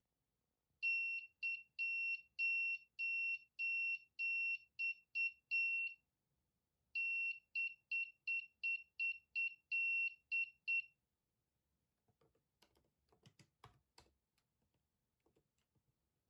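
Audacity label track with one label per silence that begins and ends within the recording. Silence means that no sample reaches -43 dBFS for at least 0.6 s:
5.880000	6.950000	silence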